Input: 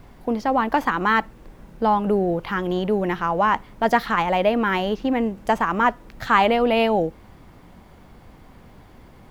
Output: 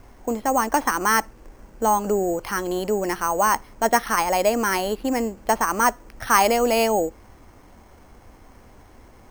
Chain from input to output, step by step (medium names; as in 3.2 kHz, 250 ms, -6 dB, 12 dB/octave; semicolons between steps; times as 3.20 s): peaking EQ 160 Hz -11 dB 0.68 oct; careless resampling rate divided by 6×, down filtered, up hold